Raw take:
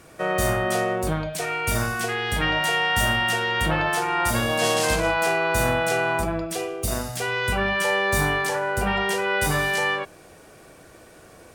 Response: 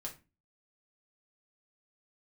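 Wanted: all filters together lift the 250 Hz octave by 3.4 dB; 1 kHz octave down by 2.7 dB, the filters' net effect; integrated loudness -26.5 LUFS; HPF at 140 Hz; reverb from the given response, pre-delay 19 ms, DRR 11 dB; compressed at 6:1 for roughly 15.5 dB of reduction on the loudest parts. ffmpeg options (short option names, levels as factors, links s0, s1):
-filter_complex "[0:a]highpass=140,equalizer=f=250:t=o:g=6,equalizer=f=1000:t=o:g=-4,acompressor=threshold=0.0158:ratio=6,asplit=2[s0][s1];[1:a]atrim=start_sample=2205,adelay=19[s2];[s1][s2]afir=irnorm=-1:irlink=0,volume=0.355[s3];[s0][s3]amix=inputs=2:normalize=0,volume=3.55"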